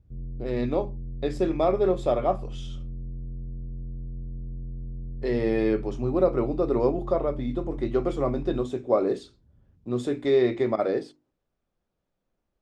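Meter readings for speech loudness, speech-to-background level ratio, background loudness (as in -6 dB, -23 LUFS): -26.5 LUFS, 12.0 dB, -38.5 LUFS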